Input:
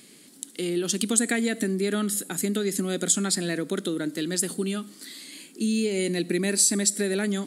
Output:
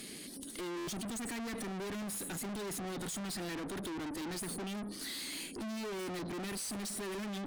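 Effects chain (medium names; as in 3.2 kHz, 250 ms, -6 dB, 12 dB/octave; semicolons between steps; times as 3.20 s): band-stop 7.5 kHz, Q 6.3; spectral gate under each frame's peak -25 dB strong; peak limiter -18.5 dBFS, peak gain reduction 10.5 dB; valve stage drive 47 dB, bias 0.5; buffer glitch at 0.77 s, samples 512, times 8; trim +8 dB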